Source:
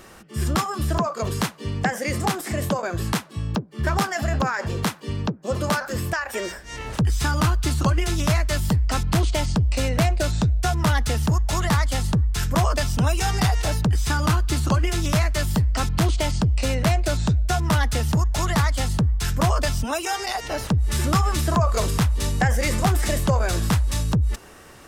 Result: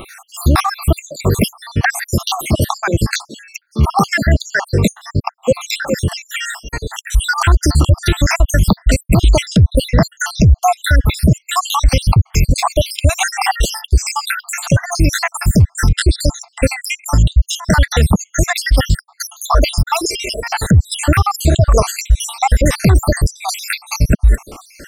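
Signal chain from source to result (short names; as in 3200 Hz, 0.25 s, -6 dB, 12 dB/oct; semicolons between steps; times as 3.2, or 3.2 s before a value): random spectral dropouts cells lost 73%; high shelf 12000 Hz +6 dB, from 2.21 s -3 dB; maximiser +16 dB; gain -1 dB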